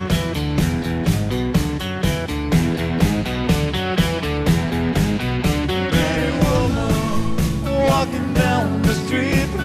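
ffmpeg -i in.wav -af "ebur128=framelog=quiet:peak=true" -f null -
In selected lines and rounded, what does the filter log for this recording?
Integrated loudness:
  I:         -19.5 LUFS
  Threshold: -29.5 LUFS
Loudness range:
  LRA:         1.4 LU
  Threshold: -39.5 LUFS
  LRA low:   -20.2 LUFS
  LRA high:  -18.9 LUFS
True peak:
  Peak:       -4.5 dBFS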